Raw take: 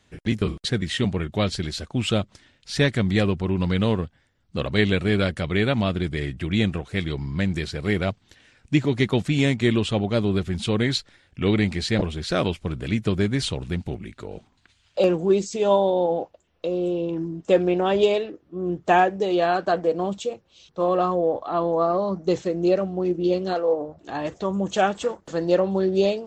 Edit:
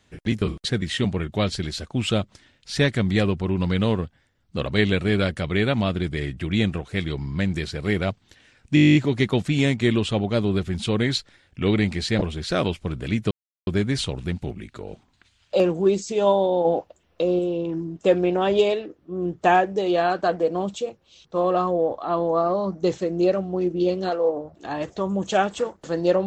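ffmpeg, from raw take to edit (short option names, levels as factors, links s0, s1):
-filter_complex "[0:a]asplit=14[s0][s1][s2][s3][s4][s5][s6][s7][s8][s9][s10][s11][s12][s13];[s0]atrim=end=8.772[s14];[s1]atrim=start=8.748:end=8.772[s15];[s2]atrim=start=8.748:end=8.772[s16];[s3]atrim=start=8.748:end=8.772[s17];[s4]atrim=start=8.748:end=8.772[s18];[s5]atrim=start=8.748:end=8.772[s19];[s6]atrim=start=8.748:end=8.772[s20];[s7]atrim=start=8.748:end=8.772[s21];[s8]atrim=start=8.748:end=8.772[s22];[s9]atrim=start=8.748:end=8.772[s23];[s10]atrim=start=8.748:end=13.11,asetpts=PTS-STARTPTS,afade=t=out:st=4.358:d=0.004:c=hsin,apad=pad_dur=0.36[s24];[s11]atrim=start=13.11:end=16.092,asetpts=PTS-STARTPTS,afade=t=in:d=0.004:c=hsin[s25];[s12]atrim=start=16.088:end=16.832,asetpts=PTS-STARTPTS,volume=1.58[s26];[s13]atrim=start=16.828[s27];[s14][s15]acrossfade=d=0.004:c1=hsin:c2=hsin[s28];[s28][s16]acrossfade=d=0.004:c1=hsin:c2=hsin[s29];[s29][s17]acrossfade=d=0.004:c1=hsin:c2=hsin[s30];[s30][s18]acrossfade=d=0.004:c1=hsin:c2=hsin[s31];[s31][s19]acrossfade=d=0.004:c1=hsin:c2=hsin[s32];[s32][s20]acrossfade=d=0.004:c1=hsin:c2=hsin[s33];[s33][s21]acrossfade=d=0.004:c1=hsin:c2=hsin[s34];[s34][s22]acrossfade=d=0.004:c1=hsin:c2=hsin[s35];[s35][s23]acrossfade=d=0.004:c1=hsin:c2=hsin[s36];[s24][s25]concat=n=2:v=0:a=1[s37];[s36][s37]acrossfade=d=0.004:c1=hsin:c2=hsin[s38];[s38][s26]acrossfade=d=0.004:c1=hsin:c2=hsin[s39];[s39][s27]acrossfade=d=0.004:c1=hsin:c2=hsin"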